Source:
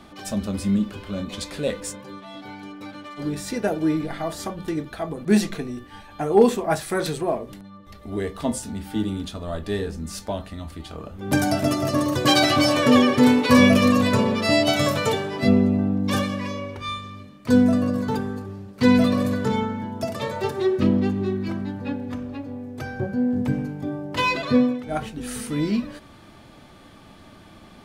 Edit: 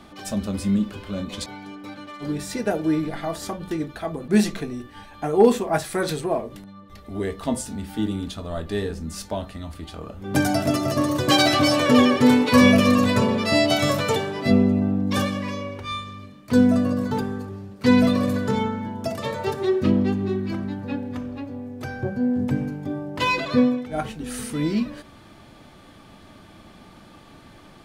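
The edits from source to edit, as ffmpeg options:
-filter_complex "[0:a]asplit=2[a][b];[a]atrim=end=1.462[c];[b]atrim=start=2.428[d];[c][d]acrossfade=d=0.004:c1=hsin:c2=hsin"

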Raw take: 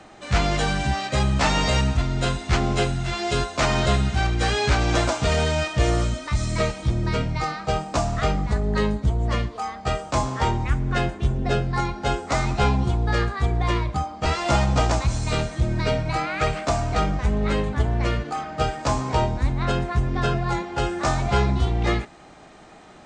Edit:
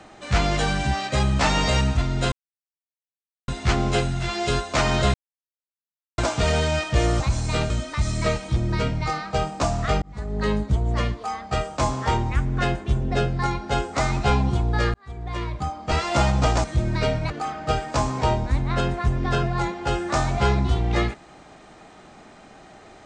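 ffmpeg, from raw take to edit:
-filter_complex "[0:a]asplit=10[a][b][c][d][e][f][g][h][i][j];[a]atrim=end=2.32,asetpts=PTS-STARTPTS,afade=t=out:st=2.316:d=0.004:c=hsin,apad=pad_dur=1.16[k];[b]atrim=start=2.32:end=3.98,asetpts=PTS-STARTPTS,afade=t=in:d=0.004:c=hsin,afade=t=out:st=1.656:d=0.004:c=hsin[l];[c]atrim=start=3.98:end=5.02,asetpts=PTS-STARTPTS,volume=0[m];[d]atrim=start=5.02:end=6.042,asetpts=PTS-STARTPTS,afade=t=in:d=0.004:c=hsin[n];[e]atrim=start=14.978:end=15.482[o];[f]atrim=start=6.038:end=8.36,asetpts=PTS-STARTPTS,afade=t=out:st=2.318:d=0.004:c=hsin[p];[g]atrim=start=8.36:end=13.28,asetpts=PTS-STARTPTS,afade=t=in:d=0.52,afade=t=out:st=4.916:d=0.004:c=hsin[q];[h]atrim=start=13.28:end=14.982,asetpts=PTS-STARTPTS,afade=t=in:d=0.94[r];[i]atrim=start=15.478:end=16.142[s];[j]atrim=start=18.208[t];[k][l][m][n]concat=n=4:v=0:a=1[u];[u][o]acrossfade=d=0.004:c1=hsin:c2=hsin[v];[p][q][r]concat=n=3:v=0:a=1[w];[v][w]acrossfade=d=0.004:c1=hsin:c2=hsin[x];[x][s]acrossfade=d=0.004:c1=hsin:c2=hsin[y];[y][t]acrossfade=d=0.004:c1=hsin:c2=hsin"

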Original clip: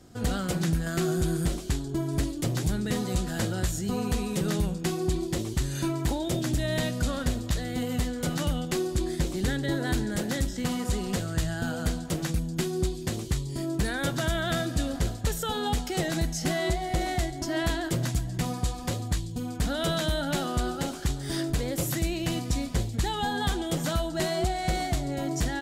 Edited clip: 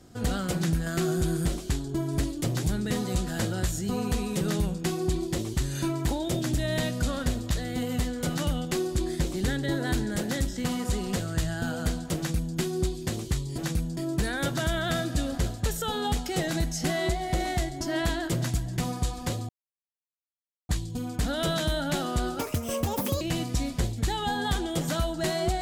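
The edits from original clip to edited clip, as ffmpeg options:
-filter_complex "[0:a]asplit=6[a][b][c][d][e][f];[a]atrim=end=13.582[g];[b]atrim=start=12.168:end=12.562[h];[c]atrim=start=13.578:end=19.1,asetpts=PTS-STARTPTS,afade=t=out:st=5.518:d=0.004:c=hsin,apad=pad_dur=1.2[i];[d]atrim=start=19.1:end=20.804,asetpts=PTS-STARTPTS,afade=t=in:d=0.004:c=hsin[j];[e]atrim=start=20.8:end=22.17,asetpts=PTS-STARTPTS,asetrate=73647,aresample=44100[k];[f]atrim=start=22.166[l];[g][h]acrossfade=d=0.004:c1=hsin:c2=hsin[m];[i][j]concat=n=2:v=0:a=1[n];[m][n]acrossfade=d=0.004:c1=hsin:c2=hsin[o];[o][k]acrossfade=d=0.004:c1=hsin:c2=hsin[p];[p][l]acrossfade=d=0.004:c1=hsin:c2=hsin"

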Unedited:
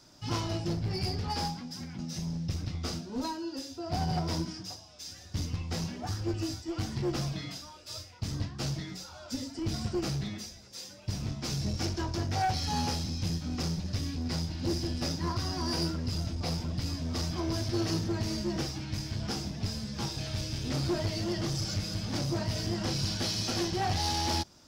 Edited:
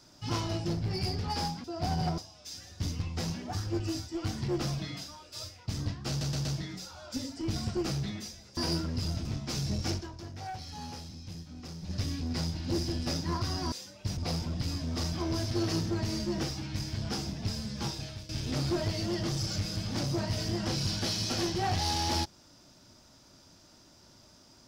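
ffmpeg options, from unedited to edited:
-filter_complex "[0:a]asplit=13[a][b][c][d][e][f][g][h][i][j][k][l][m];[a]atrim=end=1.642[n];[b]atrim=start=3.738:end=4.282[o];[c]atrim=start=4.718:end=8.752[p];[d]atrim=start=8.628:end=8.752[q];[e]atrim=start=8.628:end=8.752[r];[f]atrim=start=8.628:end=10.752[s];[g]atrim=start=15.668:end=16.352[t];[h]atrim=start=11.198:end=12.05,asetpts=PTS-STARTPTS,afade=t=out:st=0.712:d=0.14:c=qua:silence=0.281838[u];[i]atrim=start=12.05:end=13.72,asetpts=PTS-STARTPTS,volume=-11dB[v];[j]atrim=start=13.72:end=15.672,asetpts=PTS-STARTPTS,afade=t=in:d=0.14:c=qua:silence=0.281838[w];[k]atrim=start=10.748:end=11.202[x];[l]atrim=start=16.348:end=20.47,asetpts=PTS-STARTPTS,afade=t=out:st=3.702:d=0.42:silence=0.149624[y];[m]atrim=start=20.47,asetpts=PTS-STARTPTS,afade=t=in:d=0.004:c=hsin:silence=0.149624[z];[n][o]acrossfade=d=0.004:c1=hsin:c2=hsin[aa];[aa][p]acrossfade=d=0.004:c1=hsin:c2=hsin[ab];[ab][q]acrossfade=d=0.004:c1=hsin:c2=hsin[ac];[ac][r]acrossfade=d=0.004:c1=hsin:c2=hsin[ad];[ad][s]acrossfade=d=0.004:c1=hsin:c2=hsin[ae];[ae][t]acrossfade=d=0.004:c1=hsin:c2=hsin[af];[u][v][w]concat=n=3:v=0:a=1[ag];[af][ag]acrossfade=d=0.004:c1=hsin:c2=hsin[ah];[ah][x]acrossfade=d=0.004:c1=hsin:c2=hsin[ai];[y][z]concat=n=2:v=0:a=1[aj];[ai][aj]acrossfade=d=0.004:c1=hsin:c2=hsin"

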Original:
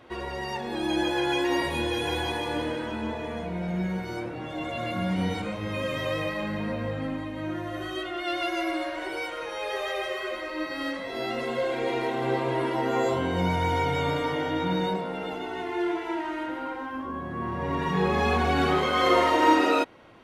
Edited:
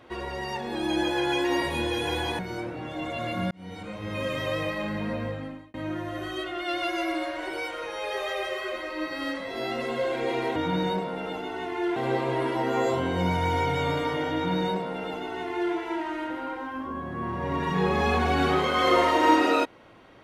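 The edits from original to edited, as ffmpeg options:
-filter_complex "[0:a]asplit=6[a][b][c][d][e][f];[a]atrim=end=2.392[g];[b]atrim=start=3.978:end=5.1,asetpts=PTS-STARTPTS,afade=t=out:st=1.118:d=0.004:c=hsin[h];[c]atrim=start=5.1:end=7.33,asetpts=PTS-STARTPTS,afade=t=in:d=0.72,afade=t=out:st=1.71:d=0.52[i];[d]atrim=start=7.33:end=12.152,asetpts=PTS-STARTPTS,afade=t=in:d=0.004:c=hsin[j];[e]atrim=start=14.528:end=15.932[k];[f]atrim=start=12.148[l];[h][i][j]concat=n=3:v=0:a=1[m];[g][m]acrossfade=d=0.004:c1=hsin:c2=hsin[n];[n][k]acrossfade=d=0.004:c1=hsin:c2=hsin[o];[o][l]acrossfade=d=0.004:c1=hsin:c2=hsin"

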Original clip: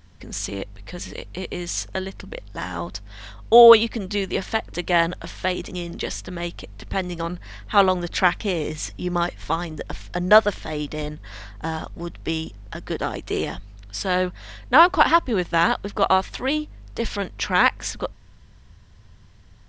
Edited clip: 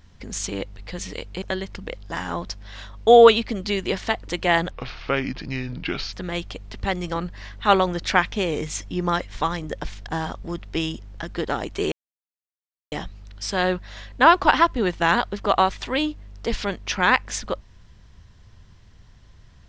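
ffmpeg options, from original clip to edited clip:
-filter_complex "[0:a]asplit=6[a][b][c][d][e][f];[a]atrim=end=1.422[g];[b]atrim=start=1.868:end=5.164[h];[c]atrim=start=5.16:end=6.21,asetpts=PTS-STARTPTS,asetrate=32634,aresample=44100,atrim=end_sample=62574,asetpts=PTS-STARTPTS[i];[d]atrim=start=6.206:end=10.152[j];[e]atrim=start=11.588:end=13.44,asetpts=PTS-STARTPTS,afade=t=out:st=1.848:d=0.004:c=hsin,apad=pad_dur=1[k];[f]atrim=start=13.44,asetpts=PTS-STARTPTS,afade=t=in:d=0.004:c=hsin[l];[g][h]acrossfade=d=0.004:c1=hsin:c2=hsin[m];[m][i]acrossfade=d=0.004:c1=hsin:c2=hsin[n];[n][j]acrossfade=d=0.004:c1=hsin:c2=hsin[o];[k][l]concat=n=2:v=0:a=1[p];[o][p]acrossfade=d=0.004:c1=hsin:c2=hsin"

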